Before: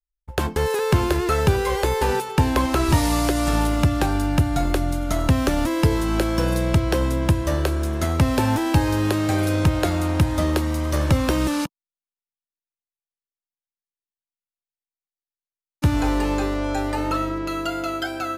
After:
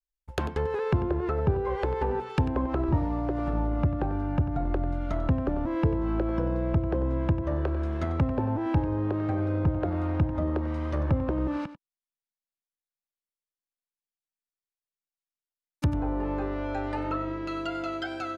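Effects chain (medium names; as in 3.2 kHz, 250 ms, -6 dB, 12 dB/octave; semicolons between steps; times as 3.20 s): low-pass that closes with the level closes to 840 Hz, closed at -16 dBFS; delay 94 ms -14 dB; trim -6.5 dB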